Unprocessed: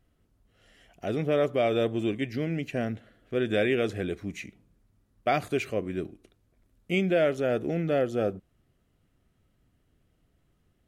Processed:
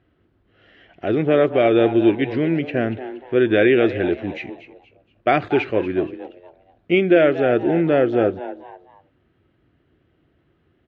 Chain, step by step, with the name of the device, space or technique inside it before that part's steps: frequency-shifting delay pedal into a guitar cabinet (frequency-shifting echo 236 ms, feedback 34%, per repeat +130 Hz, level -13.5 dB; cabinet simulation 77–3500 Hz, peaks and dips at 190 Hz -5 dB, 340 Hz +8 dB, 1.6 kHz +4 dB); trim +7.5 dB

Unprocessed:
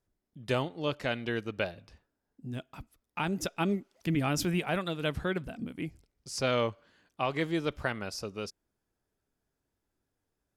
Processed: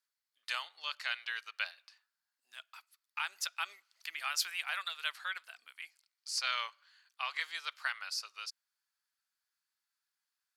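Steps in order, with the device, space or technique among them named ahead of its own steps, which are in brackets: headphones lying on a table (high-pass 1.2 kHz 24 dB/octave; peaking EQ 4.4 kHz +9 dB 0.25 oct)

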